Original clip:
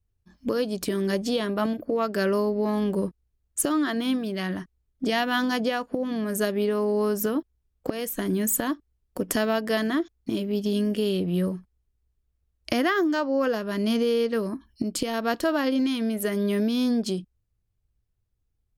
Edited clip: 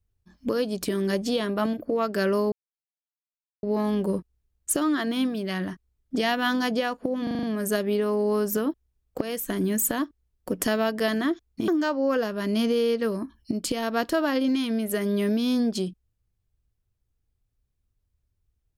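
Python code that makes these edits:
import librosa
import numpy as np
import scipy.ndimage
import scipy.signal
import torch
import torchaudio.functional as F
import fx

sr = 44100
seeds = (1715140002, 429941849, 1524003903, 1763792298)

y = fx.edit(x, sr, fx.insert_silence(at_s=2.52, length_s=1.11),
    fx.stutter(start_s=6.12, slice_s=0.04, count=6),
    fx.cut(start_s=10.37, length_s=2.62), tone=tone)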